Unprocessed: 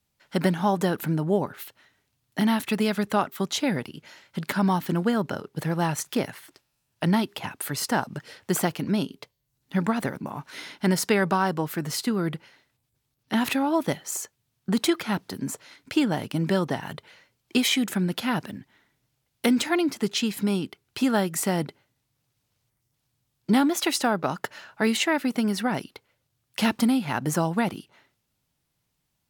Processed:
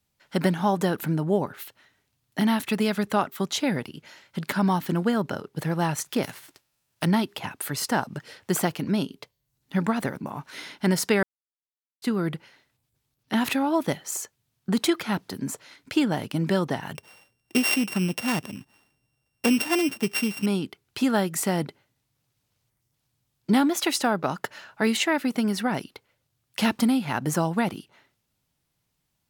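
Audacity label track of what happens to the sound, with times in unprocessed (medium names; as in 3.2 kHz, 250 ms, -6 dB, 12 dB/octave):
6.220000	7.040000	formants flattened exponent 0.6
11.230000	12.020000	mute
16.950000	20.460000	sorted samples in blocks of 16 samples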